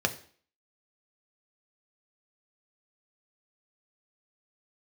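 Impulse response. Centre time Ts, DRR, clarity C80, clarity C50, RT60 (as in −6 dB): 7 ms, 5.5 dB, 18.5 dB, 15.0 dB, 0.50 s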